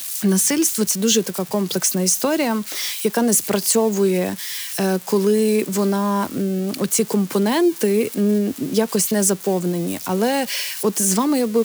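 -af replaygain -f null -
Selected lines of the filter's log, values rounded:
track_gain = +1.2 dB
track_peak = 0.478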